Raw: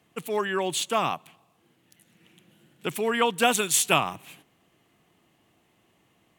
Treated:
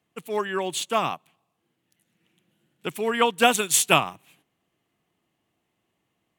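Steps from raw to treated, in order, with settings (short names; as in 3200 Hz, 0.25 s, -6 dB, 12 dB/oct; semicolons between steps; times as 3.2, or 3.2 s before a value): upward expander 1.5:1, over -46 dBFS; gain +4 dB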